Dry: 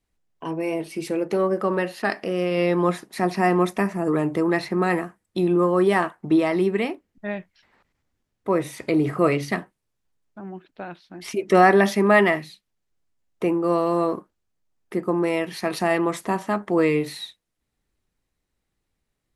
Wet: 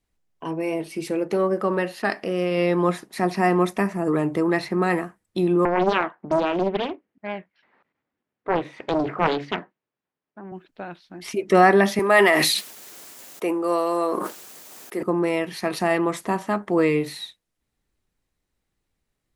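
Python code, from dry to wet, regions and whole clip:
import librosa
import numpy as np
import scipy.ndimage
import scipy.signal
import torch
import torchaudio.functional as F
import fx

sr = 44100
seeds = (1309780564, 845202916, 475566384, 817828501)

y = fx.chain(x, sr, fx.bandpass_edges(low_hz=210.0, high_hz=2500.0),
    fx.doppler_dist(depth_ms=0.93), at=(5.65, 10.52))
y = fx.chain(y, sr, fx.highpass(hz=360.0, slope=12),
    fx.high_shelf(hz=7200.0, db=11.0),
    fx.sustainer(db_per_s=24.0), at=(11.99, 15.03))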